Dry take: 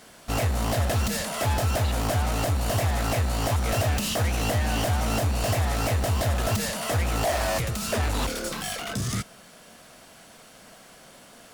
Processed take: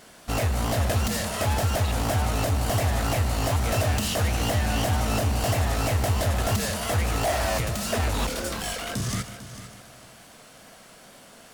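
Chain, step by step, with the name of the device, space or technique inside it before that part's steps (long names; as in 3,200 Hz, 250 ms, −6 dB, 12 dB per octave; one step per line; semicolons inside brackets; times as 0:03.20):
multi-head tape echo (echo machine with several playback heads 150 ms, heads first and third, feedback 42%, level −13.5 dB; tape wow and flutter)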